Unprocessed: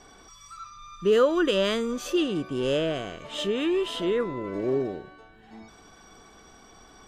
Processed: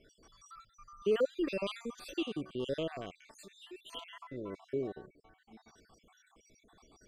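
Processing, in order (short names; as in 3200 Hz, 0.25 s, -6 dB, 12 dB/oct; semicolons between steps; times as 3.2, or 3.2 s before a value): random spectral dropouts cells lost 58%; 3.31–3.93 pre-emphasis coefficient 0.8; gain -8 dB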